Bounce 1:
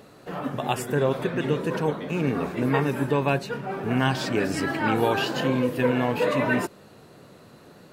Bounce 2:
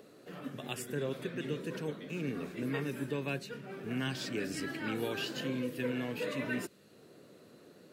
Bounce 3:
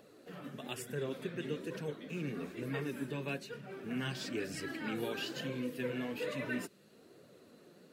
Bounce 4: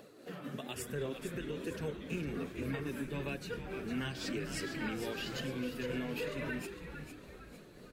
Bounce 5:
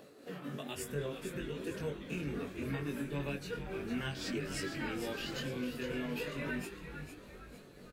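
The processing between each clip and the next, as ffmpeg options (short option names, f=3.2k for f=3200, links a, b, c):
-filter_complex "[0:a]highpass=f=220:p=1,equalizer=f=870:w=1.1:g=-14.5,acrossover=split=280|1100|4700[a][b][c][d];[b]acompressor=mode=upward:threshold=-42dB:ratio=2.5[e];[a][e][c][d]amix=inputs=4:normalize=0,volume=-7dB"
-af "flanger=delay=1.1:depth=4.9:regen=-35:speed=1.1:shape=triangular,volume=1.5dB"
-filter_complex "[0:a]tremolo=f=3.7:d=0.41,alimiter=level_in=10dB:limit=-24dB:level=0:latency=1:release=196,volume=-10dB,asplit=6[a][b][c][d][e][f];[b]adelay=455,afreqshift=-97,volume=-8.5dB[g];[c]adelay=910,afreqshift=-194,volume=-15.4dB[h];[d]adelay=1365,afreqshift=-291,volume=-22.4dB[i];[e]adelay=1820,afreqshift=-388,volume=-29.3dB[j];[f]adelay=2275,afreqshift=-485,volume=-36.2dB[k];[a][g][h][i][j][k]amix=inputs=6:normalize=0,volume=5dB"
-filter_complex "[0:a]asplit=2[a][b];[b]adelay=21,volume=-3.5dB[c];[a][c]amix=inputs=2:normalize=0,volume=-1.5dB"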